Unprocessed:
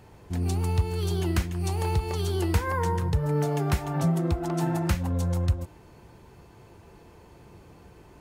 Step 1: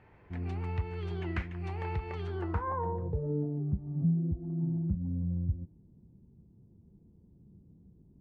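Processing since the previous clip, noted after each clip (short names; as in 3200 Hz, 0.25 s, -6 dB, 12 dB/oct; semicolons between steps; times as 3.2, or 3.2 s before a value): low-pass sweep 2100 Hz -> 210 Hz, 2.21–3.69; gain -9 dB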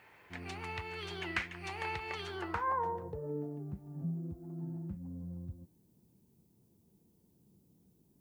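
tilt +4.5 dB/oct; gain +2 dB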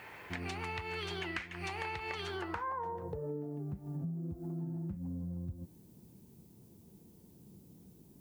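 compressor 6:1, threshold -47 dBFS, peak gain reduction 16.5 dB; gain +10 dB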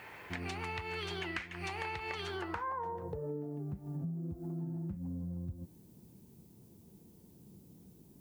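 nothing audible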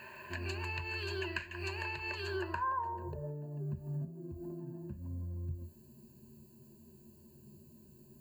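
ripple EQ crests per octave 1.4, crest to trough 18 dB; gain -3.5 dB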